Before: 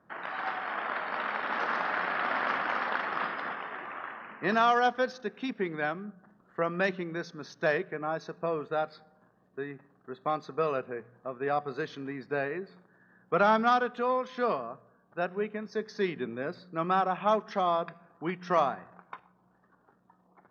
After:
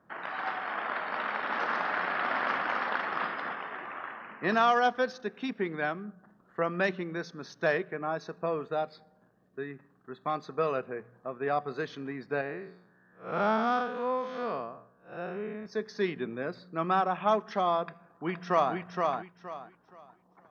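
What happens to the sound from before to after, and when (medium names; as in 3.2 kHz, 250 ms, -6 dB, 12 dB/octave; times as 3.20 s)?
8.72–10.34 s: peaking EQ 1.7 kHz -> 470 Hz -6.5 dB
12.41–15.66 s: spectral blur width 166 ms
17.83–18.75 s: echo throw 470 ms, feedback 25%, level -3.5 dB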